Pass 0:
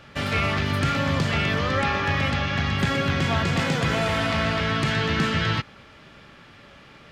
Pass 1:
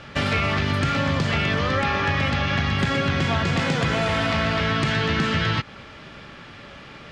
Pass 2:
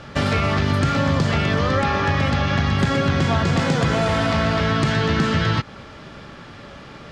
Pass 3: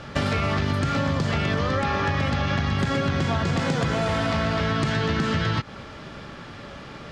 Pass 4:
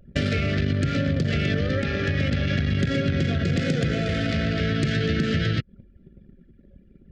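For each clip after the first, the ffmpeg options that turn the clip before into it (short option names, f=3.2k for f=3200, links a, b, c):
-af "lowpass=7.8k,acompressor=threshold=-26dB:ratio=4,volume=6.5dB"
-af "equalizer=f=2.5k:t=o:w=1.3:g=-6.5,volume=4dB"
-af "acompressor=threshold=-20dB:ratio=6"
-af "asuperstop=centerf=960:order=4:qfactor=0.92,anlmdn=39.8,volume=1.5dB"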